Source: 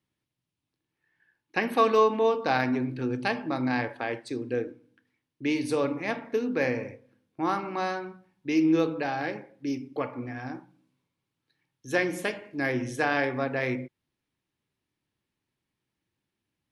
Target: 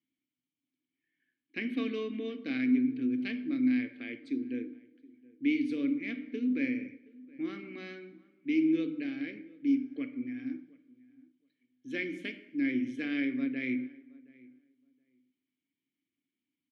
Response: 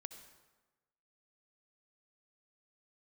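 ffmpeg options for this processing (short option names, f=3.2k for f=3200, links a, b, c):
-filter_complex "[0:a]asplit=3[a][b][c];[a]bandpass=f=270:t=q:w=8,volume=0dB[d];[b]bandpass=f=2.29k:t=q:w=8,volume=-6dB[e];[c]bandpass=f=3.01k:t=q:w=8,volume=-9dB[f];[d][e][f]amix=inputs=3:normalize=0,asplit=2[g][h];[h]adelay=721,lowpass=f=1.5k:p=1,volume=-22.5dB,asplit=2[i][j];[j]adelay=721,lowpass=f=1.5k:p=1,volume=0.17[k];[g][i][k]amix=inputs=3:normalize=0,asplit=2[l][m];[1:a]atrim=start_sample=2205[n];[m][n]afir=irnorm=-1:irlink=0,volume=-3.5dB[o];[l][o]amix=inputs=2:normalize=0,volume=2.5dB"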